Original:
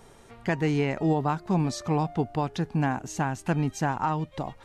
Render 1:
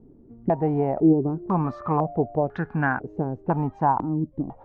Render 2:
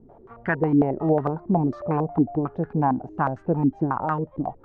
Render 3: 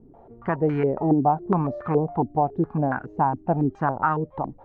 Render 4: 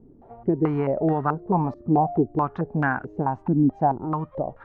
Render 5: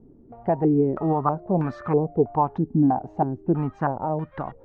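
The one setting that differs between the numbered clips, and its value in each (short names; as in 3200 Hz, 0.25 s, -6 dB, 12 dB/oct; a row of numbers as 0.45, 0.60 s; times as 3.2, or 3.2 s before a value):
stepped low-pass, rate: 2, 11, 7.2, 4.6, 3.1 Hz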